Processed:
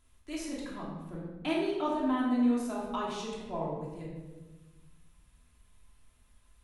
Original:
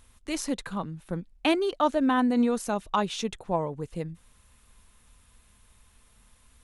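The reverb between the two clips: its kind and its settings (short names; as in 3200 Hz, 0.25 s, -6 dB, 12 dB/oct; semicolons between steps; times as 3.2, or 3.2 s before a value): shoebox room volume 810 m³, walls mixed, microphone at 3 m; gain -14 dB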